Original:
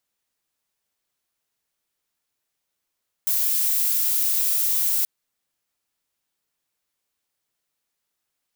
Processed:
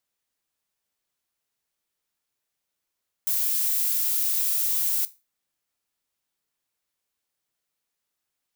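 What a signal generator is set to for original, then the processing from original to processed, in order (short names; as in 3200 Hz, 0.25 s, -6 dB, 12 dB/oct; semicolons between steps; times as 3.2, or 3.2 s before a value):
noise violet, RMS -21.5 dBFS 1.78 s
resonator 66 Hz, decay 0.28 s, harmonics all, mix 40%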